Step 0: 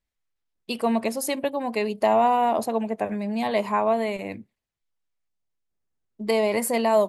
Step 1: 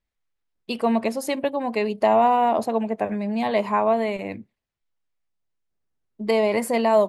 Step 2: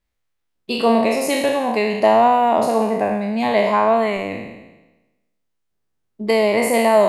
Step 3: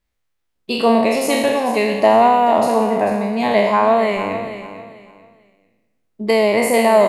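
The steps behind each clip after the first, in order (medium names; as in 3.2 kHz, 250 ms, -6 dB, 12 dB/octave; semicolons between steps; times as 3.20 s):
treble shelf 6.8 kHz -11 dB; trim +2 dB
spectral sustain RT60 1.08 s; trim +3 dB
feedback delay 444 ms, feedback 25%, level -11.5 dB; trim +1.5 dB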